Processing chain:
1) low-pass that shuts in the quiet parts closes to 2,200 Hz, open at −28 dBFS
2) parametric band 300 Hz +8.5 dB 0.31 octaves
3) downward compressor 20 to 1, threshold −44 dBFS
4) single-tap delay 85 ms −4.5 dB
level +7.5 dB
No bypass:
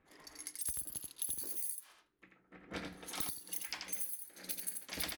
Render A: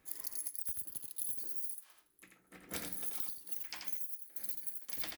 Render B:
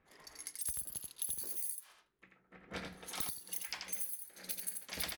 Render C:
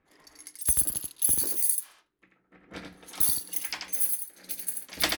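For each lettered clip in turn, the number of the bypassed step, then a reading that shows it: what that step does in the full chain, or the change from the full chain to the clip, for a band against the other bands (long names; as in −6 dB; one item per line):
1, change in crest factor +1.5 dB
2, 250 Hz band −3.0 dB
3, average gain reduction 8.5 dB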